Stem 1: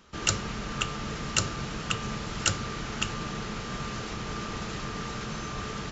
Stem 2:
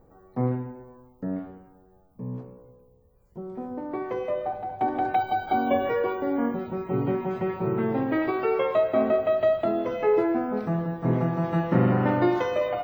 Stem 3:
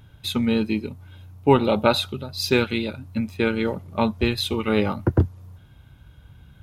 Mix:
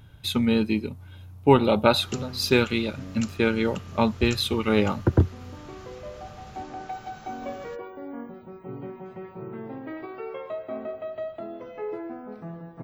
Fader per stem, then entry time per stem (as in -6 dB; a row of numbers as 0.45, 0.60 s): -13.5, -11.5, -0.5 dB; 1.85, 1.75, 0.00 s